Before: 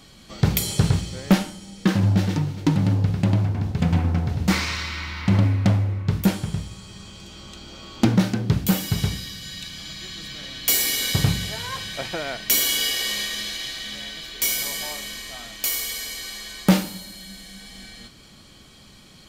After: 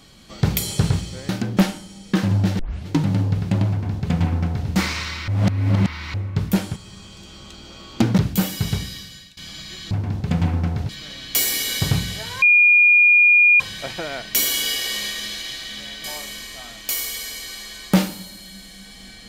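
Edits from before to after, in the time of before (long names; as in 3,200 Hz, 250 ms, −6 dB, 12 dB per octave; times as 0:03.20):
0:02.31: tape start 0.29 s
0:03.42–0:04.40: duplicate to 0:10.22
0:05.00–0:05.86: reverse
0:06.48–0:06.79: remove
0:08.21–0:08.49: move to 0:01.29
0:09.28–0:09.68: fade out, to −23.5 dB
0:11.75: insert tone 2,430 Hz −9.5 dBFS 1.18 s
0:14.19–0:14.79: remove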